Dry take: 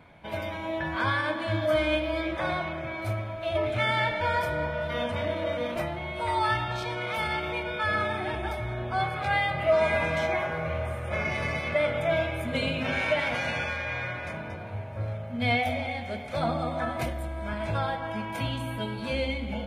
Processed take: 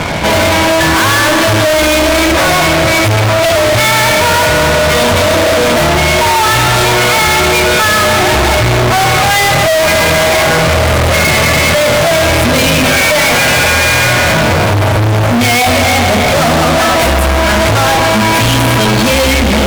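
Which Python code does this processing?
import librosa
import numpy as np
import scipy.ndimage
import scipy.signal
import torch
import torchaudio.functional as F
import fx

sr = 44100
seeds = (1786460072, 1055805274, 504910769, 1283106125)

y = fx.peak_eq(x, sr, hz=130.0, db=-10.5, octaves=1.5, at=(16.76, 17.56))
y = fx.fuzz(y, sr, gain_db=54.0, gate_db=-57.0)
y = y * librosa.db_to_amplitude(4.5)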